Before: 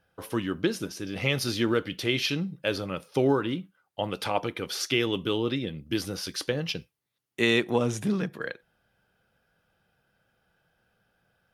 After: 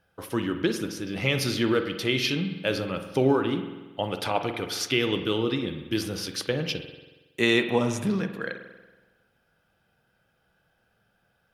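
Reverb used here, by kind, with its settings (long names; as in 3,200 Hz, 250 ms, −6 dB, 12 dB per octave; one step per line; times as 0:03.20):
spring reverb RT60 1.2 s, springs 46 ms, chirp 20 ms, DRR 7.5 dB
level +1 dB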